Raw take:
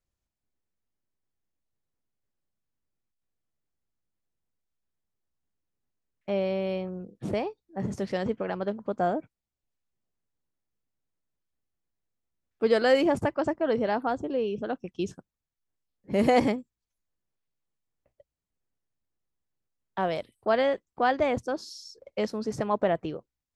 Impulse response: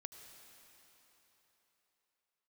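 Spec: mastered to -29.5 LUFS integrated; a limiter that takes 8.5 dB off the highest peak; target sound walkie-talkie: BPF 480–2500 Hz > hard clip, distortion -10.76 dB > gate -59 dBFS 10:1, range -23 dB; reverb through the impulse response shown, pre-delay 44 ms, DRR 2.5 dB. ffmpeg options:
-filter_complex "[0:a]alimiter=limit=-18.5dB:level=0:latency=1,asplit=2[a][b];[1:a]atrim=start_sample=2205,adelay=44[c];[b][c]afir=irnorm=-1:irlink=0,volume=2.5dB[d];[a][d]amix=inputs=2:normalize=0,highpass=480,lowpass=2.5k,asoftclip=type=hard:threshold=-27dB,agate=range=-23dB:threshold=-59dB:ratio=10,volume=4.5dB"

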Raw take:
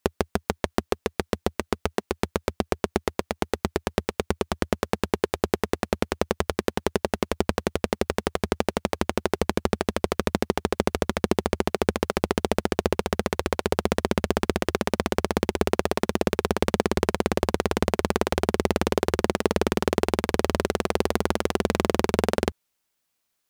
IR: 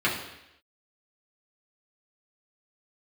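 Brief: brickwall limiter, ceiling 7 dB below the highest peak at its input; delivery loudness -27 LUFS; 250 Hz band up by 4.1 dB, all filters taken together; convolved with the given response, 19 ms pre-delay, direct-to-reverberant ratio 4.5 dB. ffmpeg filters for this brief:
-filter_complex "[0:a]equalizer=f=250:t=o:g=5.5,alimiter=limit=-9dB:level=0:latency=1,asplit=2[a][b];[1:a]atrim=start_sample=2205,adelay=19[c];[b][c]afir=irnorm=-1:irlink=0,volume=-18.5dB[d];[a][d]amix=inputs=2:normalize=0,volume=1dB"

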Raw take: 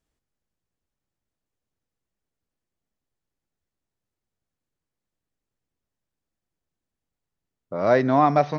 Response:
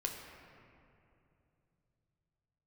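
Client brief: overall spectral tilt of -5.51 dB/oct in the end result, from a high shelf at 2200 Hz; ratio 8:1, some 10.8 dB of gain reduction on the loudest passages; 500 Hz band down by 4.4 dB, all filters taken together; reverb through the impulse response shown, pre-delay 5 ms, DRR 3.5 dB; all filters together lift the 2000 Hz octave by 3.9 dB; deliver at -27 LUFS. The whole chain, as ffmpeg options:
-filter_complex "[0:a]equalizer=f=500:t=o:g=-6.5,equalizer=f=2k:t=o:g=3,highshelf=f=2.2k:g=4.5,acompressor=threshold=-26dB:ratio=8,asplit=2[a][b];[1:a]atrim=start_sample=2205,adelay=5[c];[b][c]afir=irnorm=-1:irlink=0,volume=-4.5dB[d];[a][d]amix=inputs=2:normalize=0,volume=2.5dB"

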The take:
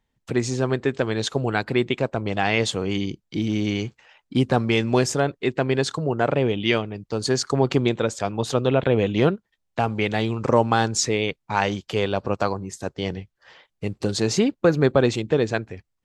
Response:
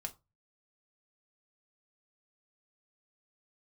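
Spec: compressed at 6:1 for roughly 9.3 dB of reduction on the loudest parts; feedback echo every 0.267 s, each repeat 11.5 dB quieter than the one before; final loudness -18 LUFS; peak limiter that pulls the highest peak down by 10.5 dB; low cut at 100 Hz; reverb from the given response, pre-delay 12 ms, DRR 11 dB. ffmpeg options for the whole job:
-filter_complex "[0:a]highpass=100,acompressor=threshold=-23dB:ratio=6,alimiter=limit=-19.5dB:level=0:latency=1,aecho=1:1:267|534|801:0.266|0.0718|0.0194,asplit=2[a][b];[1:a]atrim=start_sample=2205,adelay=12[c];[b][c]afir=irnorm=-1:irlink=0,volume=-9dB[d];[a][d]amix=inputs=2:normalize=0,volume=13.5dB"

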